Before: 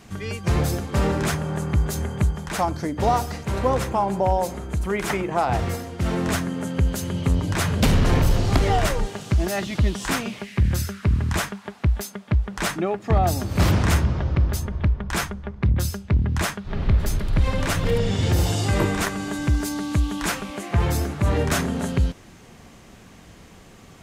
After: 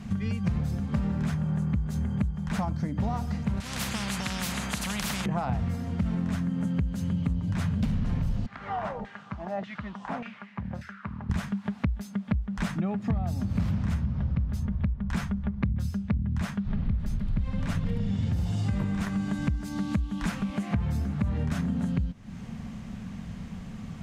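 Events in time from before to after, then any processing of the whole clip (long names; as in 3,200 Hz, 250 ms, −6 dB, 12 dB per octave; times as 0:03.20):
0:03.60–0:05.26: every bin compressed towards the loudest bin 10 to 1
0:08.46–0:11.30: auto-filter band-pass saw down 1.7 Hz 590–1,900 Hz
whole clip: low-pass filter 3,900 Hz 6 dB per octave; low shelf with overshoot 270 Hz +7.5 dB, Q 3; downward compressor 6 to 1, threshold −26 dBFS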